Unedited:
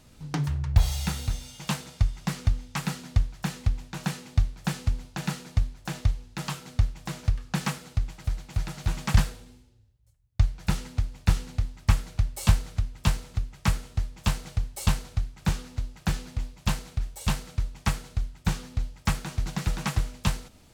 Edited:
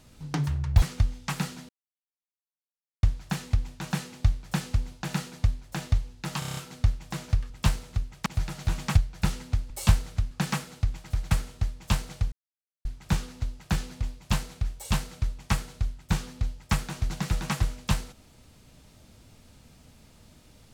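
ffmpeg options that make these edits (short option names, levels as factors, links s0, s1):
-filter_complex "[0:a]asplit=17[s0][s1][s2][s3][s4][s5][s6][s7][s8][s9][s10][s11][s12][s13][s14][s15][s16];[s0]atrim=end=0.822[s17];[s1]atrim=start=2.288:end=3.16,asetpts=PTS-STARTPTS,afade=t=out:st=0.868:d=0.004:c=hsin,apad=pad_dur=1.34[s18];[s2]atrim=start=3.16:end=6.552,asetpts=PTS-STARTPTS,afade=t=in:d=0.004:c=hsin[s19];[s3]atrim=start=6.518:end=6.552[s20];[s4]atrim=start=6.518:end=6.552[s21];[s5]atrim=start=6.518:end=6.552[s22];[s6]atrim=start=6.518:end=6.552[s23];[s7]atrim=start=6.518:end=6.552[s24];[s8]atrim=start=6.518:end=7.452[s25];[s9]atrim=start=12.908:end=13.672[s26];[s10]atrim=start=8.448:end=9.162[s27];[s11]atrim=start=10.418:end=11.152[s28];[s12]atrim=start=12.298:end=12.912[s29];[s13]atrim=start=7.448:end=8.452[s30];[s14]atrim=start=13.668:end=14.68,asetpts=PTS-STARTPTS,afade=t=out:st=1.008:d=0.004:c=hsin[s31];[s15]atrim=start=14.68:end=15.21,asetpts=PTS-STARTPTS,volume=0[s32];[s16]atrim=start=15.21,asetpts=PTS-STARTPTS,afade=t=in:d=0.004:c=hsin[s33];[s18][s19]concat=n=2:v=0:a=1[s34];[s17][s34]acrossfade=d=0.004:c1=hsin:c2=hsin[s35];[s35][s20]acrossfade=d=0.004:c1=hsin:c2=hsin[s36];[s36][s21]acrossfade=d=0.004:c1=hsin:c2=hsin[s37];[s37][s22]acrossfade=d=0.004:c1=hsin:c2=hsin[s38];[s38][s23]acrossfade=d=0.004:c1=hsin:c2=hsin[s39];[s39][s24]acrossfade=d=0.004:c1=hsin:c2=hsin[s40];[s40][s25]acrossfade=d=0.004:c1=hsin:c2=hsin[s41];[s41][s26]acrossfade=d=0.004:c1=hsin:c2=hsin[s42];[s42][s27]acrossfade=d=0.004:c1=hsin:c2=hsin[s43];[s43][s28]acrossfade=d=0.004:c1=hsin:c2=hsin[s44];[s44][s29]acrossfade=d=0.004:c1=hsin:c2=hsin[s45];[s45][s30]acrossfade=d=0.004:c1=hsin:c2=hsin[s46];[s31][s32][s33]concat=n=3:v=0:a=1[s47];[s46][s47]acrossfade=d=0.004:c1=hsin:c2=hsin"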